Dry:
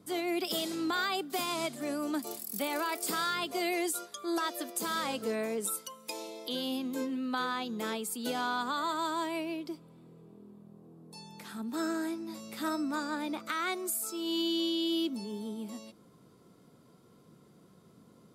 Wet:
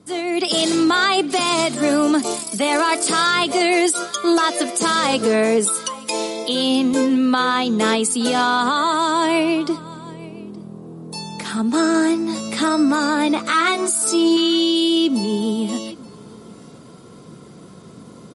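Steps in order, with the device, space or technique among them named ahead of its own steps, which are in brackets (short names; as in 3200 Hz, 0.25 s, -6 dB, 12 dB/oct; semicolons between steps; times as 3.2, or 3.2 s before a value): 13.49–14.37 doubler 18 ms -3 dB; high shelf 10000 Hz +2.5 dB; echo 0.872 s -23 dB; low-bitrate web radio (AGC gain up to 10 dB; limiter -17 dBFS, peak gain reduction 7.5 dB; gain +8.5 dB; MP3 48 kbps 44100 Hz)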